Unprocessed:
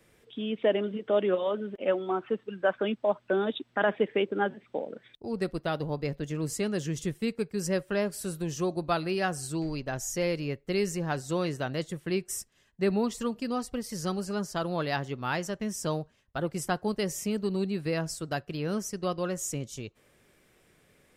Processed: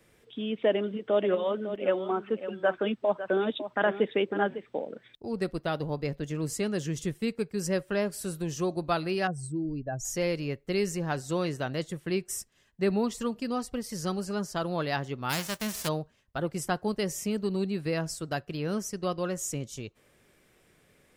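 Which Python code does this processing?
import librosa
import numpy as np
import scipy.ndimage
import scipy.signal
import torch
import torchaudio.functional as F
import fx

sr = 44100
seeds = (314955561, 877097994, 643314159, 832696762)

y = fx.echo_single(x, sr, ms=553, db=-11.5, at=(0.68, 4.69))
y = fx.spec_expand(y, sr, power=2.0, at=(9.27, 10.05))
y = fx.envelope_flatten(y, sr, power=0.3, at=(15.29, 15.87), fade=0.02)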